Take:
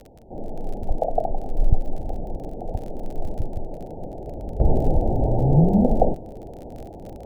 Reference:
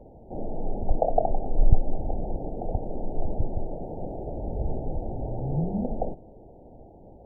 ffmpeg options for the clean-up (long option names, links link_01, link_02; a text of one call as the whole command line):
ffmpeg -i in.wav -af "adeclick=threshold=4,asetnsamples=nb_out_samples=441:pad=0,asendcmd='4.6 volume volume -11dB',volume=0dB" out.wav